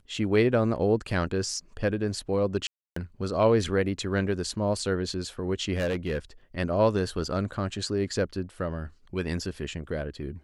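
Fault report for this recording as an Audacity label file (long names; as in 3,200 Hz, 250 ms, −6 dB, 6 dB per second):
2.670000	2.960000	drop-out 294 ms
5.740000	6.180000	clipping −24 dBFS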